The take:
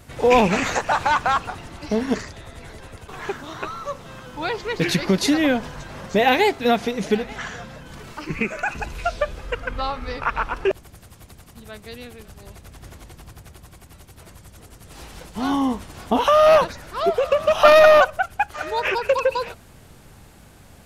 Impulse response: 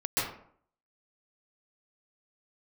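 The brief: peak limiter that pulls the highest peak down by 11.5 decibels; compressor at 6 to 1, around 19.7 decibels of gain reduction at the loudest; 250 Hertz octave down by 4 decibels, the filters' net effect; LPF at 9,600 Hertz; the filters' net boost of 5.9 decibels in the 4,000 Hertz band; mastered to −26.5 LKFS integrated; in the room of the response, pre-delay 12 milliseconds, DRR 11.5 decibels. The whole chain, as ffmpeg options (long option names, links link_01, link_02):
-filter_complex "[0:a]lowpass=9600,equalizer=frequency=250:width_type=o:gain=-5,equalizer=frequency=4000:width_type=o:gain=7.5,acompressor=threshold=-31dB:ratio=6,alimiter=level_in=5dB:limit=-24dB:level=0:latency=1,volume=-5dB,asplit=2[link_01][link_02];[1:a]atrim=start_sample=2205,adelay=12[link_03];[link_02][link_03]afir=irnorm=-1:irlink=0,volume=-21dB[link_04];[link_01][link_04]amix=inputs=2:normalize=0,volume=12.5dB"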